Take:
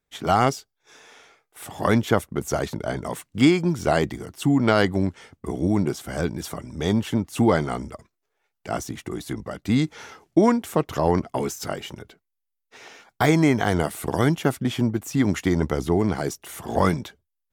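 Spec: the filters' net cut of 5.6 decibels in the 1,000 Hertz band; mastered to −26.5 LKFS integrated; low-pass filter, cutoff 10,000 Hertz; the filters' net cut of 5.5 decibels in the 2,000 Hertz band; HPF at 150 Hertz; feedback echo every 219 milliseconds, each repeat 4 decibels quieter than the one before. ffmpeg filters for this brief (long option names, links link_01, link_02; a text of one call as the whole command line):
ffmpeg -i in.wav -af "highpass=150,lowpass=10000,equalizer=frequency=1000:width_type=o:gain=-7,equalizer=frequency=2000:width_type=o:gain=-4.5,aecho=1:1:219|438|657|876|1095|1314|1533|1752|1971:0.631|0.398|0.25|0.158|0.0994|0.0626|0.0394|0.0249|0.0157,volume=-2.5dB" out.wav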